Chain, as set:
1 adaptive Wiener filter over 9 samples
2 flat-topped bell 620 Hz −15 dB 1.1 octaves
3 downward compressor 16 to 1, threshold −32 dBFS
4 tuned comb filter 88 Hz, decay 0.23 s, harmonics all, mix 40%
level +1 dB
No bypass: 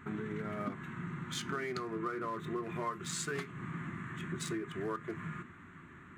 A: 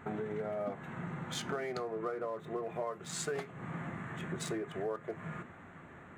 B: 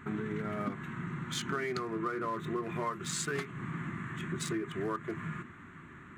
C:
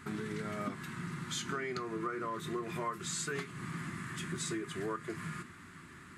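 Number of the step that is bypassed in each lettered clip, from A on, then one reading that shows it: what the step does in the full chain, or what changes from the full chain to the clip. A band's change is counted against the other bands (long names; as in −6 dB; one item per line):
2, 500 Hz band +5.5 dB
4, change in integrated loudness +3.0 LU
1, 8 kHz band +3.0 dB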